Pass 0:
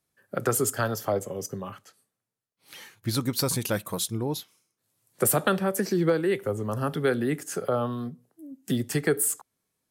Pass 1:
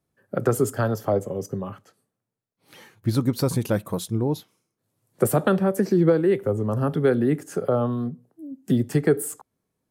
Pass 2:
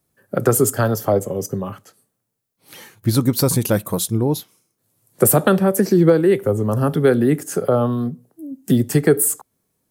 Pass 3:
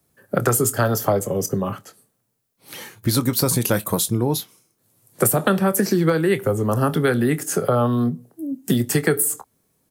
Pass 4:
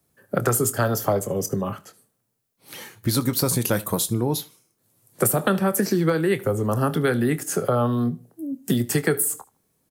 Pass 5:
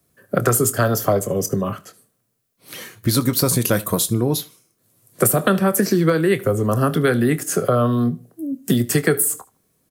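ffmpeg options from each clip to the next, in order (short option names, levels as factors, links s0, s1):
-af "tiltshelf=f=1200:g=6.5"
-af "crystalizer=i=1.5:c=0,volume=1.78"
-filter_complex "[0:a]acrossover=split=180|870[s0][s1][s2];[s0]acompressor=threshold=0.0355:ratio=4[s3];[s1]acompressor=threshold=0.0562:ratio=4[s4];[s2]acompressor=threshold=0.0708:ratio=4[s5];[s3][s4][s5]amix=inputs=3:normalize=0,asplit=2[s6][s7];[s7]adelay=25,volume=0.2[s8];[s6][s8]amix=inputs=2:normalize=0,volume=1.58"
-af "aecho=1:1:76|152:0.0841|0.021,volume=0.75"
-af "asuperstop=centerf=860:order=4:qfactor=6.6,volume=1.58"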